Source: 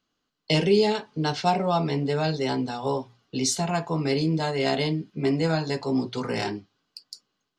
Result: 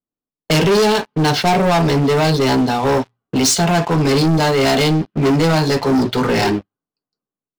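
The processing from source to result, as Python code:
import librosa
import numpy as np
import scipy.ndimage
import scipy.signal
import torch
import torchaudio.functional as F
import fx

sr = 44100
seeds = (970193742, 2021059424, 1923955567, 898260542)

y = fx.env_lowpass(x, sr, base_hz=750.0, full_db=-20.0)
y = fx.leveller(y, sr, passes=5)
y = y * 10.0 ** (-2.0 / 20.0)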